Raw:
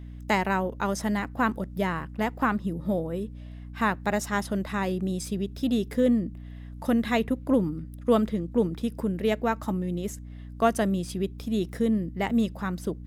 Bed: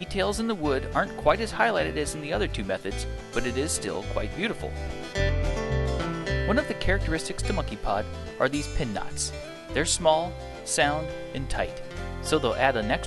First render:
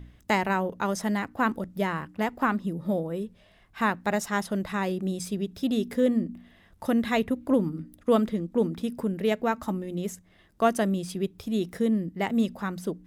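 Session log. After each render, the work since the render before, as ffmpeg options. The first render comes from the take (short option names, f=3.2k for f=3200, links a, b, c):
-af "bandreject=f=60:t=h:w=4,bandreject=f=120:t=h:w=4,bandreject=f=180:t=h:w=4,bandreject=f=240:t=h:w=4,bandreject=f=300:t=h:w=4"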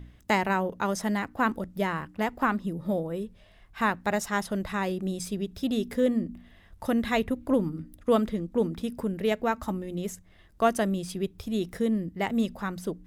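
-af "asubboost=boost=2.5:cutoff=100"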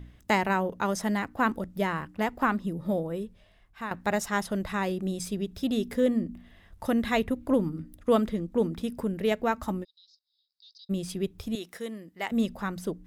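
-filter_complex "[0:a]asplit=3[a][b][c];[a]afade=t=out:st=9.83:d=0.02[d];[b]asuperpass=centerf=4400:order=8:qfactor=3,afade=t=in:st=9.83:d=0.02,afade=t=out:st=10.89:d=0.02[e];[c]afade=t=in:st=10.89:d=0.02[f];[d][e][f]amix=inputs=3:normalize=0,asettb=1/sr,asplit=3[g][h][i];[g]atrim=end=11.554[j];[h]atrim=start=11.55:end=12.32,asetpts=PTS-STARTPTS,afade=t=in:d=0.004:c=qsin,afade=t=out:st=0.766:d=0.004:c=qsin,highpass=f=1k:p=1[k];[i]atrim=start=12.316[l];[j][k]acrossfade=d=0.004:c1=hsin:c2=qsin[m];[m][l]acrossfade=d=0.004:c1=qsin:c2=hsin,asplit=2[n][o];[n]atrim=end=3.91,asetpts=PTS-STARTPTS,afade=t=out:st=3.11:d=0.8:silence=0.251189[p];[o]atrim=start=3.91,asetpts=PTS-STARTPTS,afade=t=in:d=0.004:c=hsin:silence=0.251189[q];[p][q]concat=n=2:v=0:a=1"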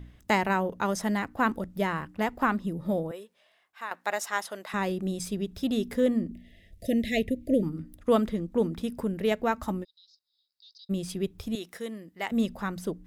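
-filter_complex "[0:a]asettb=1/sr,asplit=3[a][b][c];[a]atrim=end=3.114[d];[b]atrim=start=3.11:end=4.74,asetpts=PTS-STARTPTS,afade=t=in:d=0.004:c=qsin,afade=t=out:st=1.626:d=0.004:c=qsin,highpass=600[e];[c]atrim=start=4.736[f];[d][e]acrossfade=d=0.004:c1=hsin:c2=qsin[g];[g][f]acrossfade=d=0.004:c1=qsin:c2=hsin,asettb=1/sr,asplit=3[h][i][j];[h]atrim=end=6.314[k];[i]atrim=start=6.31:end=7.63,asetpts=PTS-STARTPTS,afade=t=in:d=0.004:c=qsin,afade=t=out:st=1.316:d=0.004:c=qsin,asuperstop=centerf=1100:order=20:qfactor=1[l];[j]atrim=start=7.626[m];[k][l]acrossfade=d=0.004:c1=hsin:c2=qsin[n];[n][m]acrossfade=d=0.004:c1=qsin:c2=hsin"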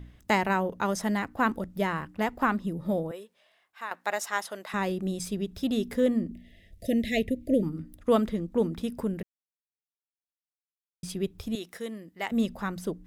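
-filter_complex "[0:a]asplit=3[a][b][c];[a]atrim=end=9.23,asetpts=PTS-STARTPTS,afade=t=out:st=9.226:d=0.004:c=hsin[d];[b]atrim=start=9.23:end=11.03,asetpts=PTS-STARTPTS,volume=0[e];[c]atrim=start=11.03,asetpts=PTS-STARTPTS,afade=t=in:d=0.004:c=hsin[f];[d][e][f]concat=n=3:v=0:a=1"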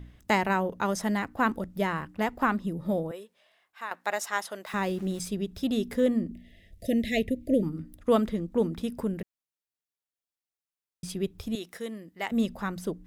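-filter_complex "[0:a]asettb=1/sr,asplit=3[a][b][c];[a]atrim=end=4.664[d];[b]atrim=start=4.66:end=5.22,asetpts=PTS-STARTPTS,afade=t=in:d=0.004:c=qsin,afade=t=out:st=0.556:d=0.004:c=qsin,aeval=exprs='val(0)*gte(abs(val(0)),0.00501)':c=same[e];[c]atrim=start=5.216[f];[d][e]acrossfade=d=0.004:c1=hsin:c2=qsin[g];[g][f]acrossfade=d=0.004:c1=qsin:c2=hsin"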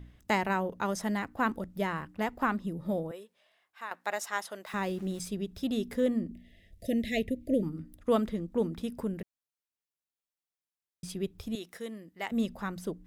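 -af "volume=-3.5dB"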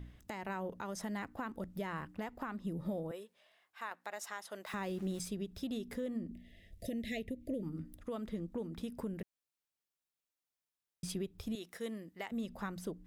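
-af "acompressor=threshold=-30dB:ratio=6,alimiter=level_in=5.5dB:limit=-24dB:level=0:latency=1:release=448,volume=-5.5dB"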